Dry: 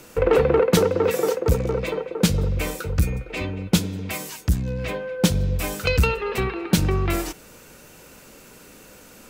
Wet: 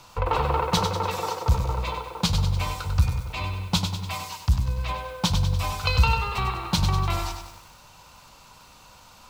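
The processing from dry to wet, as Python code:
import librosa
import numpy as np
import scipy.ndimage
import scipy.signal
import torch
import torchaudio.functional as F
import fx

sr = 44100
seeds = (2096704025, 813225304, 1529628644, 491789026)

y = fx.curve_eq(x, sr, hz=(110.0, 250.0, 430.0, 990.0, 1700.0, 4100.0, 10000.0), db=(0, -13, -16, 8, -9, 3, -11))
y = fx.echo_crushed(y, sr, ms=97, feedback_pct=55, bits=8, wet_db=-6.5)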